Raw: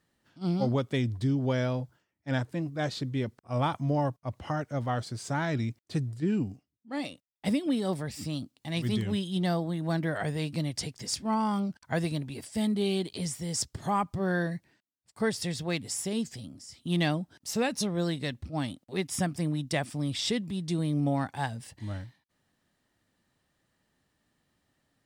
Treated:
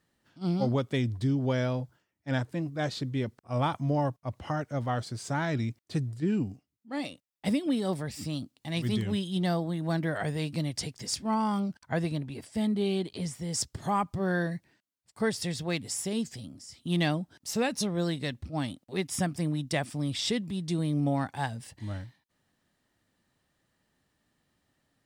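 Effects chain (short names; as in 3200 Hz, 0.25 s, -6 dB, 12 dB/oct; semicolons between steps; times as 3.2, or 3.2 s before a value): 11.85–13.53 high shelf 3900 Hz -7.5 dB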